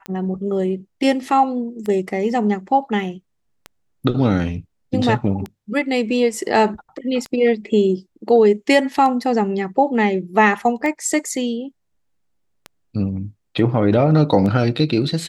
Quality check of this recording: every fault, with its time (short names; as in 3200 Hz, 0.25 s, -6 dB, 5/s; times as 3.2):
tick 33 1/3 rpm -15 dBFS